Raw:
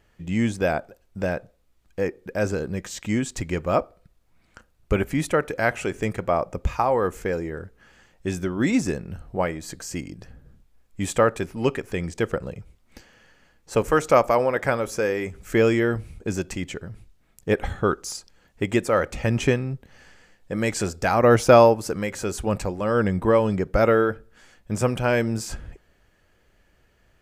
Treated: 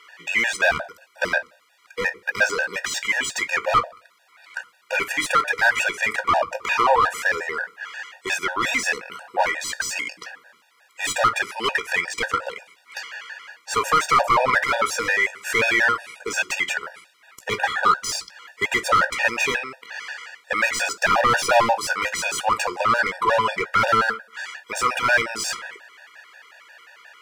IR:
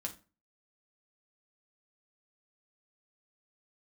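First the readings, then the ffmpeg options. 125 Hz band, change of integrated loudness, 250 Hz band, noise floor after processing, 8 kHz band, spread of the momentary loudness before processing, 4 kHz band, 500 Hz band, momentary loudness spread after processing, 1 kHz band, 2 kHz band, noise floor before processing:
−13.5 dB, +2.0 dB, −12.0 dB, −58 dBFS, +6.5 dB, 14 LU, +10.0 dB, −5.5 dB, 16 LU, +6.0 dB, +10.5 dB, −63 dBFS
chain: -filter_complex "[0:a]highpass=1200,asplit=2[link_01][link_02];[link_02]acompressor=threshold=-40dB:ratio=4,volume=-3dB[link_03];[link_01][link_03]amix=inputs=2:normalize=0,aeval=exprs='clip(val(0),-1,0.0531)':channel_layout=same,asplit=2[link_04][link_05];[link_05]highpass=frequency=720:poles=1,volume=28dB,asoftclip=type=tanh:threshold=-7dB[link_06];[link_04][link_06]amix=inputs=2:normalize=0,lowpass=frequency=1800:poles=1,volume=-6dB,asplit=2[link_07][link_08];[1:a]atrim=start_sample=2205,afade=type=out:start_time=0.31:duration=0.01,atrim=end_sample=14112,adelay=17[link_09];[link_08][link_09]afir=irnorm=-1:irlink=0,volume=-10dB[link_10];[link_07][link_10]amix=inputs=2:normalize=0,afftfilt=real='re*gt(sin(2*PI*5.6*pts/sr)*(1-2*mod(floor(b*sr/1024/480),2)),0)':imag='im*gt(sin(2*PI*5.6*pts/sr)*(1-2*mod(floor(b*sr/1024/480),2)),0)':win_size=1024:overlap=0.75,volume=2dB"

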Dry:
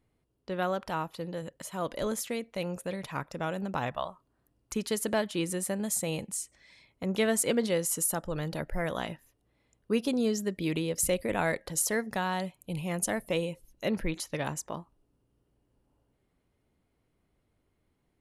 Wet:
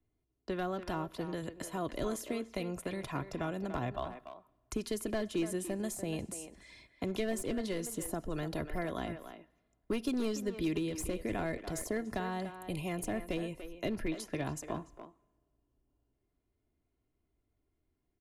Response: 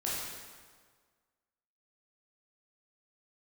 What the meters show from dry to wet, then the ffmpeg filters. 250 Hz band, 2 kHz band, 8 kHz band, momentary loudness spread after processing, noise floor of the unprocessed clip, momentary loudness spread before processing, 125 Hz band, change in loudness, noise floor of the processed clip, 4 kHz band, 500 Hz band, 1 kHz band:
−3.0 dB, −7.0 dB, −11.5 dB, 8 LU, −75 dBFS, 10 LU, −4.0 dB, −5.5 dB, −81 dBFS, −7.0 dB, −5.5 dB, −5.5 dB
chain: -filter_complex "[0:a]agate=range=-13dB:threshold=-59dB:ratio=16:detection=peak,aeval=exprs='clip(val(0),-1,0.0668)':channel_layout=same,lowshelf=frequency=450:gain=7,acrossover=split=110|340|990[link_01][link_02][link_03][link_04];[link_01]acompressor=threshold=-44dB:ratio=4[link_05];[link_02]acompressor=threshold=-38dB:ratio=4[link_06];[link_03]acompressor=threshold=-41dB:ratio=4[link_07];[link_04]acompressor=threshold=-45dB:ratio=4[link_08];[link_05][link_06][link_07][link_08]amix=inputs=4:normalize=0,aecho=1:1:2.9:0.46,asplit=2[link_09][link_10];[link_10]adelay=290,highpass=300,lowpass=3400,asoftclip=type=hard:threshold=-31dB,volume=-9dB[link_11];[link_09][link_11]amix=inputs=2:normalize=0,asplit=2[link_12][link_13];[1:a]atrim=start_sample=2205[link_14];[link_13][link_14]afir=irnorm=-1:irlink=0,volume=-28.5dB[link_15];[link_12][link_15]amix=inputs=2:normalize=0"

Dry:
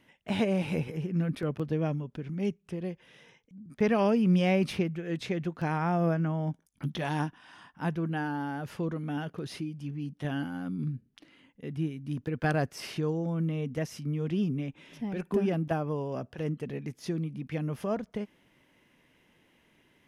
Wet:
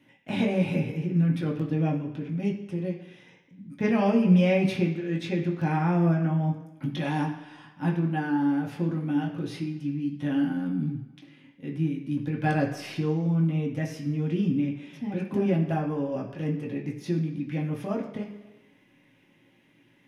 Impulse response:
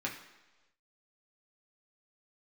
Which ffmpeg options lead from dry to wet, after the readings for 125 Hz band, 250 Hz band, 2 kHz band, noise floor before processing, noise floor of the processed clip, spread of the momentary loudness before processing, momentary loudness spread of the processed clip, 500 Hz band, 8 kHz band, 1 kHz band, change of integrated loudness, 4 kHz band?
+4.5 dB, +5.0 dB, +2.0 dB, −68 dBFS, −62 dBFS, 10 LU, 10 LU, +1.5 dB, can't be measured, +2.0 dB, +4.0 dB, +0.5 dB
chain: -filter_complex "[0:a]equalizer=frequency=1400:width_type=o:width=0.69:gain=-5.5[link_01];[1:a]atrim=start_sample=2205[link_02];[link_01][link_02]afir=irnorm=-1:irlink=0"

